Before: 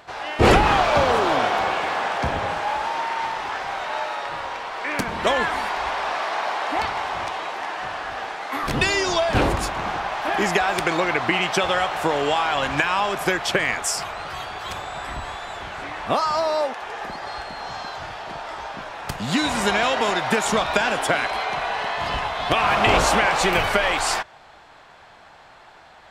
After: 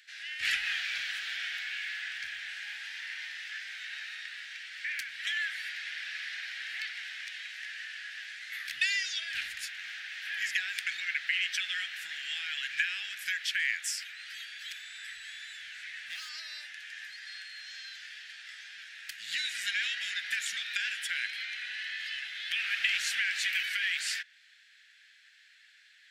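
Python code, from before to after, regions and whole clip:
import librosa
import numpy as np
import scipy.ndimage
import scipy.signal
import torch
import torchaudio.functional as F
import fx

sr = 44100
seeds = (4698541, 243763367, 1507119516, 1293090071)

y = fx.chain(x, sr, fx.low_shelf(hz=350.0, db=6.5),
    fx.clip_hard(threshold_db=-19.5), at=(15.3, 16.29))
y = fx.dynamic_eq(y, sr, hz=8100.0, q=0.77, threshold_db=-41.0, ratio=4.0, max_db=-5)
y = scipy.signal.sosfilt(scipy.signal.ellip(4, 1.0, 40, 1700.0, 'highpass', fs=sr, output='sos'), y)
y = y * 10.0 ** (-5.0 / 20.0)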